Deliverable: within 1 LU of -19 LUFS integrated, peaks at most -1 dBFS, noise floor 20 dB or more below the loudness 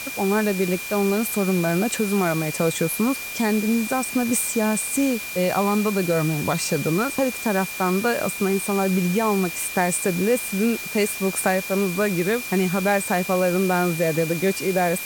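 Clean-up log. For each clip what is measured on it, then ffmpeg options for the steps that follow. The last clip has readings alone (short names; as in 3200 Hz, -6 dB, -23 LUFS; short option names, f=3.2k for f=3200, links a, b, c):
steady tone 2400 Hz; tone level -32 dBFS; noise floor -32 dBFS; noise floor target -42 dBFS; loudness -22.0 LUFS; peak -7.5 dBFS; loudness target -19.0 LUFS
-> -af "bandreject=f=2.4k:w=30"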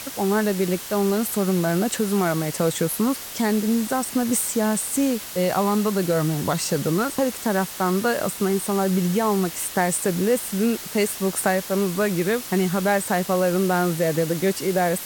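steady tone none; noise floor -35 dBFS; noise floor target -43 dBFS
-> -af "afftdn=nr=8:nf=-35"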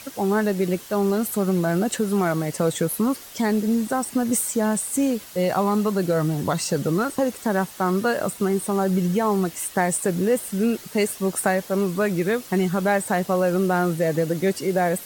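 noise floor -42 dBFS; noise floor target -43 dBFS
-> -af "afftdn=nr=6:nf=-42"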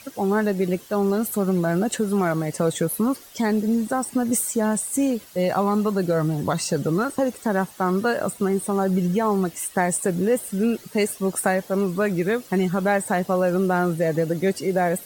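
noise floor -45 dBFS; loudness -23.0 LUFS; peak -8.0 dBFS; loudness target -19.0 LUFS
-> -af "volume=4dB"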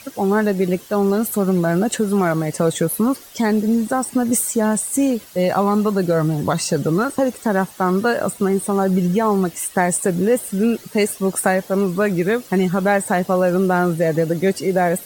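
loudness -19.0 LUFS; peak -4.0 dBFS; noise floor -41 dBFS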